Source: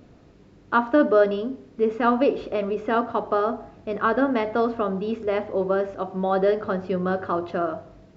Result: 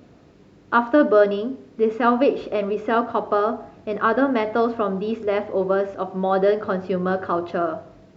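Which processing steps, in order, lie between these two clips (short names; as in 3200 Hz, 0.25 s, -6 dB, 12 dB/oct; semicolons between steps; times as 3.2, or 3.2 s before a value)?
HPF 100 Hz 6 dB/oct; gain +2.5 dB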